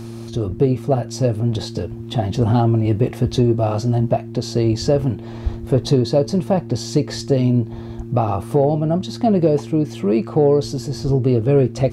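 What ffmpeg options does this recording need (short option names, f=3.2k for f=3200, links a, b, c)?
-af "bandreject=f=114.9:t=h:w=4,bandreject=f=229.8:t=h:w=4,bandreject=f=344.7:t=h:w=4"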